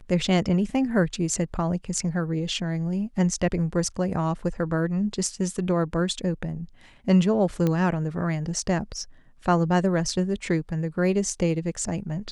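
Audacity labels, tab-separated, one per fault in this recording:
7.670000	7.670000	pop -13 dBFS

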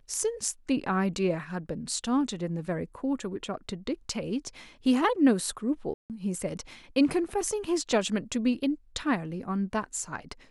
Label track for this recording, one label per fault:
5.940000	6.100000	dropout 158 ms

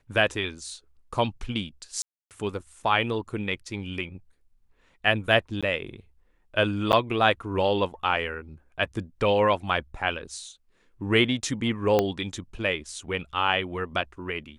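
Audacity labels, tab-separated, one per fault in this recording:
2.020000	2.310000	dropout 288 ms
5.610000	5.630000	dropout 16 ms
6.920000	6.930000	dropout 9.4 ms
11.990000	11.990000	pop -9 dBFS

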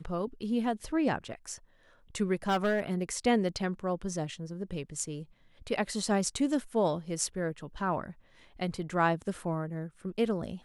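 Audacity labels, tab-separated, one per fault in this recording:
2.480000	3.120000	clipped -23.5 dBFS

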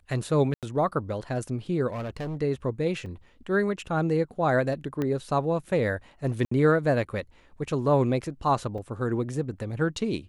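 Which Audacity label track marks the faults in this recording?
0.540000	0.630000	dropout 87 ms
1.880000	2.360000	clipped -29.5 dBFS
3.060000	3.060000	dropout 3.6 ms
5.020000	5.020000	pop -17 dBFS
6.450000	6.510000	dropout 64 ms
8.780000	8.780000	dropout 3.5 ms

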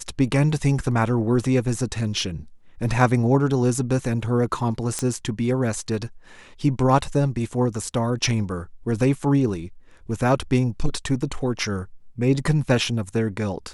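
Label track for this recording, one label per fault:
4.990000	4.990000	pop -11 dBFS

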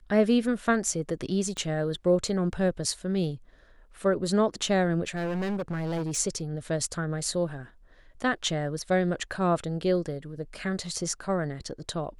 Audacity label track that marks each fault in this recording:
1.570000	1.570000	pop -21 dBFS
5.150000	6.180000	clipped -27 dBFS

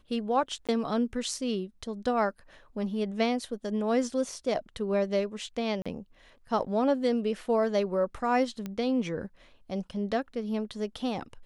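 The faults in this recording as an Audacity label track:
0.670000	0.690000	dropout 17 ms
5.820000	5.860000	dropout 36 ms
8.660000	8.660000	pop -22 dBFS

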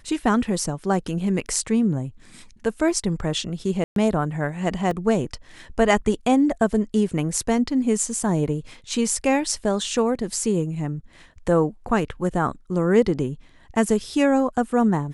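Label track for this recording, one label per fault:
3.840000	3.960000	dropout 122 ms
4.910000	4.910000	dropout 2.6 ms

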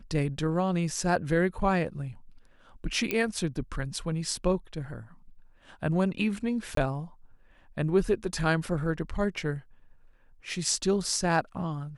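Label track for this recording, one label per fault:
3.110000	3.110000	pop -13 dBFS
6.750000	6.770000	dropout 23 ms

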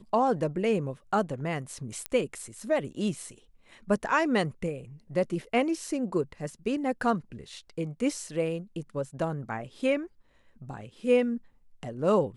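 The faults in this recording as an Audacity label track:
2.060000	2.060000	pop -14 dBFS

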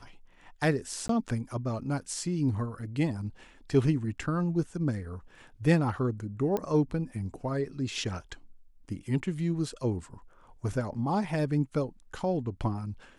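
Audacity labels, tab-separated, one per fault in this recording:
1.080000	1.090000	dropout 13 ms
6.570000	6.570000	pop -18 dBFS

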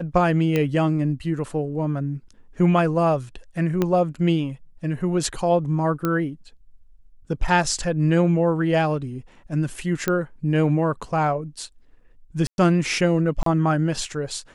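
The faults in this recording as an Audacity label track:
0.560000	0.560000	pop -10 dBFS
3.820000	3.820000	pop -9 dBFS
6.050000	6.050000	pop -10 dBFS
10.080000	10.080000	pop -8 dBFS
12.470000	12.580000	dropout 111 ms
13.430000	13.460000	dropout 33 ms

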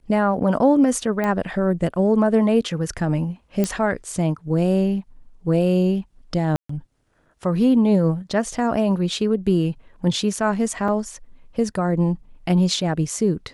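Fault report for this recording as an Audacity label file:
1.240000	1.240000	pop -12 dBFS
3.640000	3.640000	pop -8 dBFS
6.560000	6.690000	dropout 134 ms
10.880000	10.880000	dropout 3.2 ms

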